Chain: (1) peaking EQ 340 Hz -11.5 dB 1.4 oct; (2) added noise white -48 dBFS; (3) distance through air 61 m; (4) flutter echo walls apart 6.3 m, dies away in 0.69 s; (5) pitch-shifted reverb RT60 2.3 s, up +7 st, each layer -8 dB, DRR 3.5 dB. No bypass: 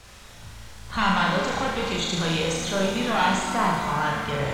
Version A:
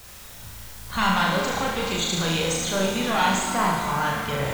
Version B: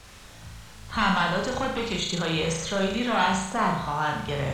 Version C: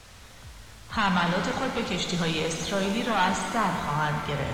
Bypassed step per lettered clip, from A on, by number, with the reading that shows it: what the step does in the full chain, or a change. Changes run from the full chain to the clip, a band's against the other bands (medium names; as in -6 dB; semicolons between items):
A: 3, 8 kHz band +4.5 dB; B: 5, momentary loudness spread change +9 LU; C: 4, 125 Hz band +1.5 dB